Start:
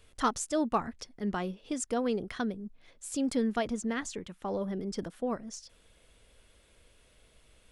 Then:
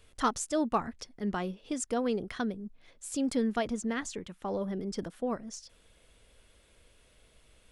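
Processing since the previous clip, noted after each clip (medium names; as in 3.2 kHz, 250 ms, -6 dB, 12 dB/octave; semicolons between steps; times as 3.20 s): no audible change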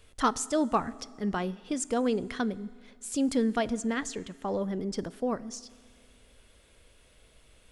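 reverberation RT60 1.9 s, pre-delay 4 ms, DRR 18.5 dB; trim +2.5 dB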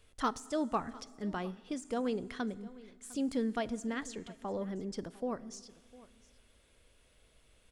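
de-esser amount 75%; delay 704 ms -20.5 dB; trim -6.5 dB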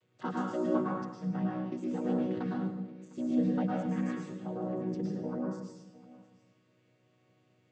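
vocoder on a held chord major triad, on B2; plate-style reverb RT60 0.8 s, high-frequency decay 0.95×, pre-delay 95 ms, DRR -3.5 dB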